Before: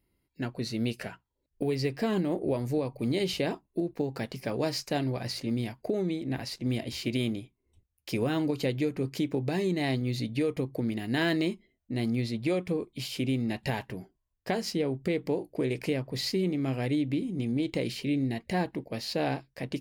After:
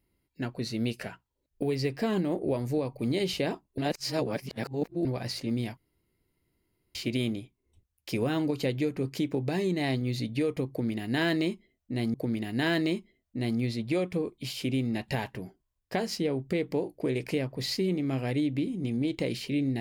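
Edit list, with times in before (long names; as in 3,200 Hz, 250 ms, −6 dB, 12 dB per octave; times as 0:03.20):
0:03.78–0:05.05: reverse
0:05.77–0:06.95: fill with room tone
0:10.69–0:12.14: repeat, 2 plays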